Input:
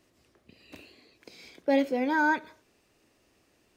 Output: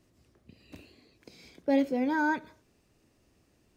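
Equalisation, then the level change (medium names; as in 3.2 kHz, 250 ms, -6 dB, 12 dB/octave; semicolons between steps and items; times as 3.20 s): tone controls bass +9 dB, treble +9 dB; treble shelf 3.1 kHz -9.5 dB; -3.0 dB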